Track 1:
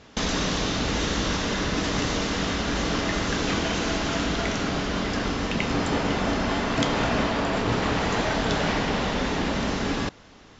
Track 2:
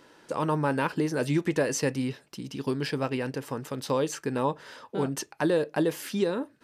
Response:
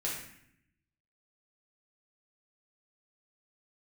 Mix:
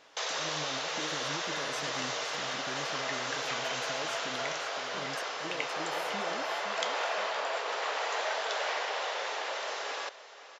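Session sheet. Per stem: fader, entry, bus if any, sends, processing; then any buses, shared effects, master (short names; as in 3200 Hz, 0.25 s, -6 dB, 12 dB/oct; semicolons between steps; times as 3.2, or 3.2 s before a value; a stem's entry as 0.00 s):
-5.5 dB, 0.00 s, no send, echo send -15.5 dB, steep high-pass 490 Hz 36 dB/oct
-13.5 dB, 0.00 s, no send, echo send -9 dB, limiter -22 dBFS, peak gain reduction 9 dB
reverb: off
echo: feedback echo 0.517 s, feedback 33%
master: dry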